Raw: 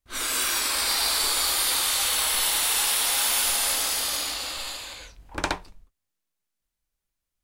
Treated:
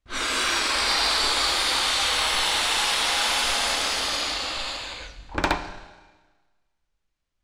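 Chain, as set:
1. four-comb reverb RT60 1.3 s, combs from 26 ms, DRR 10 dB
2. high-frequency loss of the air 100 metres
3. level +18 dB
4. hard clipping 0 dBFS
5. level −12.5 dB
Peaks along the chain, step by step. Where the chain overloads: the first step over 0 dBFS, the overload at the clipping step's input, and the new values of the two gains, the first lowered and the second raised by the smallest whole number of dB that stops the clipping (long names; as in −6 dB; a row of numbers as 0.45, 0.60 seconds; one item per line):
−10.5, −12.0, +6.0, 0.0, −12.5 dBFS
step 3, 6.0 dB
step 3 +12 dB, step 5 −6.5 dB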